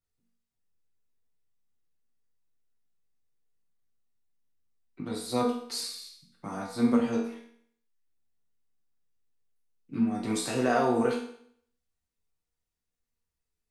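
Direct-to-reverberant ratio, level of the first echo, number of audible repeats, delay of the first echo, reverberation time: -4.5 dB, no echo, no echo, no echo, 0.60 s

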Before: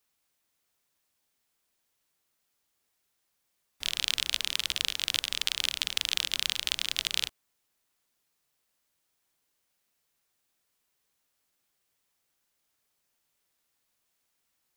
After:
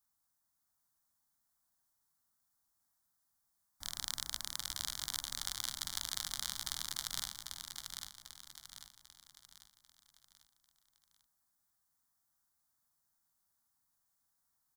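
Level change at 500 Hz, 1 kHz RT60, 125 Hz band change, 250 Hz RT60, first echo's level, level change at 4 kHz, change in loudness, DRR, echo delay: -11.0 dB, no reverb, -2.0 dB, no reverb, -5.5 dB, -12.0 dB, -10.5 dB, no reverb, 794 ms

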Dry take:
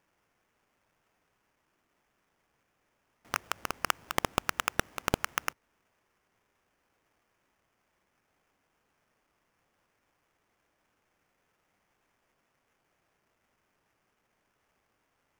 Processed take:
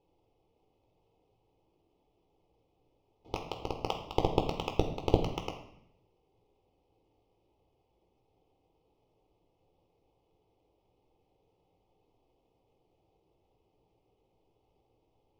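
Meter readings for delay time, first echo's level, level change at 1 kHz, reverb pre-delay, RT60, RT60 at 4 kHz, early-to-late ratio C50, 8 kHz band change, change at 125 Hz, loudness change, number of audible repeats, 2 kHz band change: no echo, no echo, -2.0 dB, 11 ms, 0.75 s, 0.65 s, 8.0 dB, -16.0 dB, +7.5 dB, -1.0 dB, no echo, -13.5 dB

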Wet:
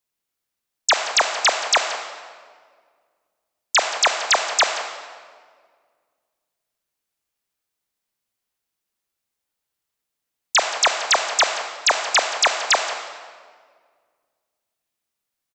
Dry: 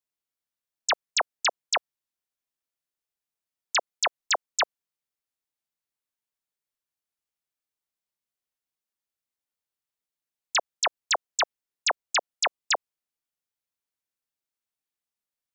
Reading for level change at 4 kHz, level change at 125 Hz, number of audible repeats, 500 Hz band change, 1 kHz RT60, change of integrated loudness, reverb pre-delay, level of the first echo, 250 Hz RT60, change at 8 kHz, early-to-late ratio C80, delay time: +8.5 dB, no reading, 1, +9.0 dB, 1.7 s, +8.0 dB, 23 ms, -16.0 dB, 2.3 s, +8.5 dB, 7.0 dB, 176 ms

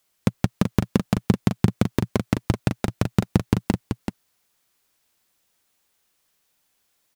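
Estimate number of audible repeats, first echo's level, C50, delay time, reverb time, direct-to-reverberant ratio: 1, -7.0 dB, no reverb, 382 ms, no reverb, no reverb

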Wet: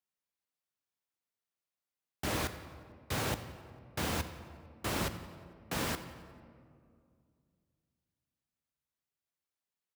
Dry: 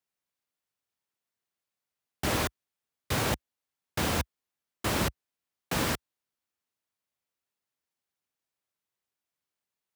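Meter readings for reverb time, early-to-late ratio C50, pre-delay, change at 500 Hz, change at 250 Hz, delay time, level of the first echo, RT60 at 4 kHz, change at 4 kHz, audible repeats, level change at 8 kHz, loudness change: 2.3 s, 11.0 dB, 10 ms, -5.5 dB, -5.5 dB, 90 ms, -19.0 dB, 1.1 s, -5.5 dB, 3, -6.0 dB, -5.5 dB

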